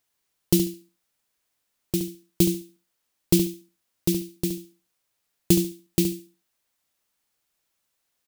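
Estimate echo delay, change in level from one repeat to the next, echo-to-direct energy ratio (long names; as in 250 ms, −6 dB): 71 ms, −14.5 dB, −9.0 dB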